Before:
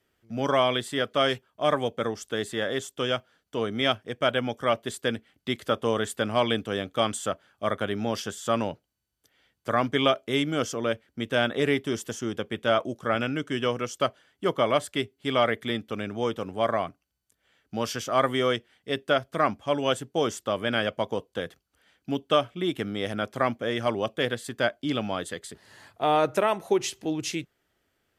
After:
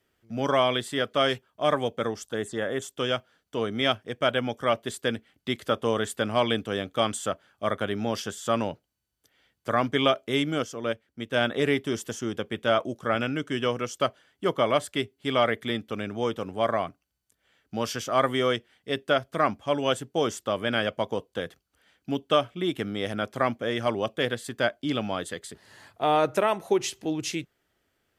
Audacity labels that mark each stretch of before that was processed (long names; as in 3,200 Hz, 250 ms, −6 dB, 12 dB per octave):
2.250000	2.820000	phaser swept by the level lowest notch 350 Hz, up to 4,600 Hz, full sweep at −26 dBFS
10.580000	11.410000	expander for the loud parts, over −34 dBFS